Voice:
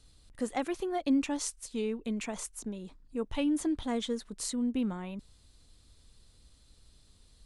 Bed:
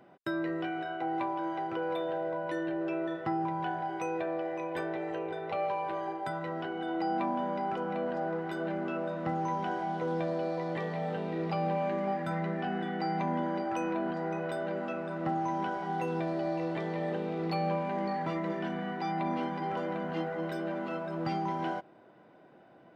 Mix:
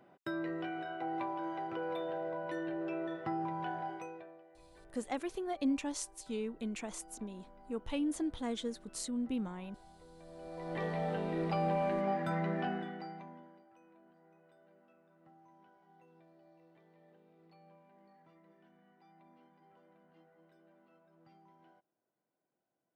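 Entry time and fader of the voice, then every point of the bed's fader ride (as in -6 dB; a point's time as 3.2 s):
4.55 s, -5.0 dB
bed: 3.88 s -5 dB
4.46 s -26 dB
10.16 s -26 dB
10.83 s -1.5 dB
12.65 s -1.5 dB
13.69 s -31 dB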